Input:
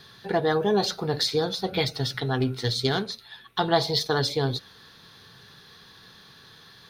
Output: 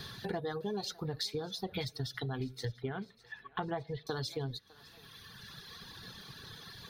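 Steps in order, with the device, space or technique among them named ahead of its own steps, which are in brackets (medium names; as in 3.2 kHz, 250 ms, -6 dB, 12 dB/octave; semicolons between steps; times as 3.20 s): 2.65–4.07 s: steep low-pass 2.7 kHz 36 dB/octave; reverb removal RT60 1.9 s; ASMR close-microphone chain (bass shelf 200 Hz +8 dB; compression 4:1, threshold -41 dBFS, peak gain reduction 20.5 dB; treble shelf 6 kHz +4.5 dB); thinning echo 605 ms, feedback 56%, high-pass 660 Hz, level -20 dB; trim +3 dB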